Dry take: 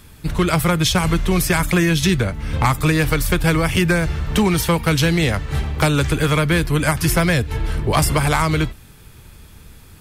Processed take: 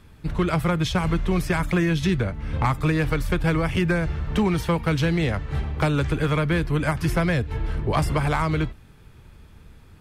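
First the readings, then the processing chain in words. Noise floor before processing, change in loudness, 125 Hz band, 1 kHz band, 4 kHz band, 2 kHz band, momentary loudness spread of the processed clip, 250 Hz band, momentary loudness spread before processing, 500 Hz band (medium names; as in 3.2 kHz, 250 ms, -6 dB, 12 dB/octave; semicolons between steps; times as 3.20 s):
-44 dBFS, -5.5 dB, -4.5 dB, -5.5 dB, -10.5 dB, -7.0 dB, 4 LU, -4.5 dB, 5 LU, -4.5 dB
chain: low-pass 2.1 kHz 6 dB/octave; trim -4.5 dB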